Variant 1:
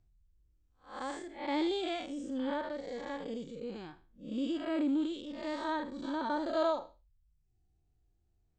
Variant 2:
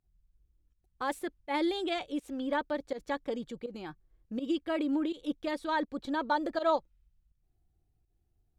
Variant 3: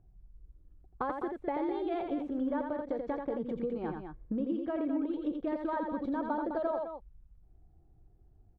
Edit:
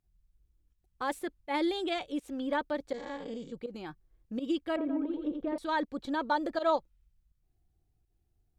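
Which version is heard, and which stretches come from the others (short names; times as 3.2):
2
2.94–3.52 from 1
4.76–5.58 from 3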